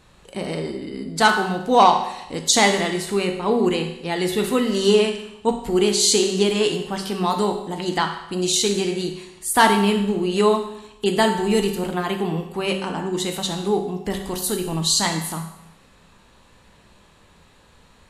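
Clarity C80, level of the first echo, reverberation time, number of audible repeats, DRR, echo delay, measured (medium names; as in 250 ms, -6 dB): 9.5 dB, no echo, 0.85 s, no echo, 4.0 dB, no echo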